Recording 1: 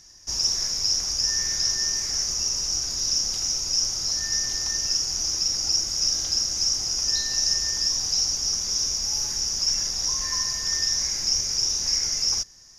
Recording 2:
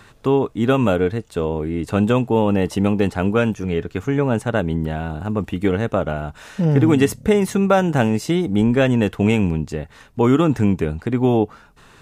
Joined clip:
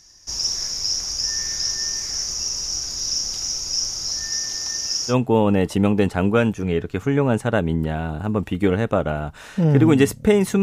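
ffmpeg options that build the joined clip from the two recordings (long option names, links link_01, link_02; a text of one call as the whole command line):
ffmpeg -i cue0.wav -i cue1.wav -filter_complex "[0:a]asettb=1/sr,asplit=3[link_01][link_02][link_03];[link_01]atrim=end=4.294[link_04];[link_02]atrim=start=4.29:end=5.15,asetpts=PTS-STARTPTS,afade=type=in:duration=0.004:curve=qsin,afade=type=out:start_time=0.856:duration=0.004:curve=qsin,lowshelf=frequency=80:gain=-11[link_05];[link_03]atrim=start=5.146[link_06];[link_04][link_05]acrossfade=duration=0.004:curve1=hsin:curve2=qsin[link_07];[link_07][link_06]acrossfade=duration=0.004:curve1=qsin:curve2=hsin,apad=whole_dur=10.62,atrim=end=10.62,atrim=end=5.15,asetpts=PTS-STARTPTS[link_08];[1:a]atrim=start=2.08:end=7.63,asetpts=PTS-STARTPTS[link_09];[link_08][link_09]acrossfade=duration=0.08:curve1=tri:curve2=tri" out.wav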